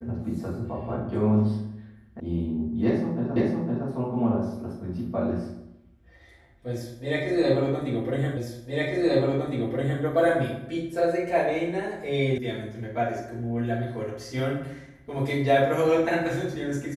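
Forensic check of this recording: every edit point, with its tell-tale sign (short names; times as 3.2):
2.2 sound cut off
3.36 repeat of the last 0.51 s
8.37 repeat of the last 1.66 s
12.38 sound cut off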